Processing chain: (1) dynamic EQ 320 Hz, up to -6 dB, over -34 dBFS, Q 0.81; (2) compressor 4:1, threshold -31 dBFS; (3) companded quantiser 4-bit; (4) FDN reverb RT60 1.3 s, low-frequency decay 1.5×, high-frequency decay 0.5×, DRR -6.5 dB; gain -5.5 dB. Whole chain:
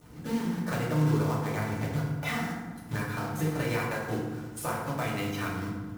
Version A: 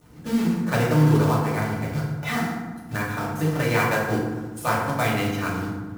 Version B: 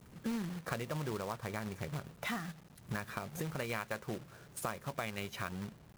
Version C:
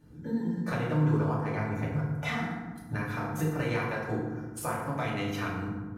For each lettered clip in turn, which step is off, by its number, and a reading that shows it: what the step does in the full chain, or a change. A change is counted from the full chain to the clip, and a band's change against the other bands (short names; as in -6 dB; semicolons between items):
2, mean gain reduction 5.0 dB; 4, momentary loudness spread change -3 LU; 3, distortion -13 dB